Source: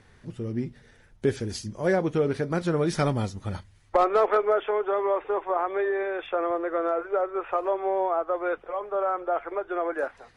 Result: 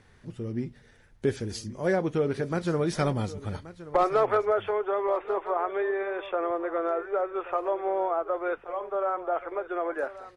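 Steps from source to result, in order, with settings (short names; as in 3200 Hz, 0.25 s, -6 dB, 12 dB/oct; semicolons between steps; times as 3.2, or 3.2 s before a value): echo 1.128 s -16 dB; gain -2 dB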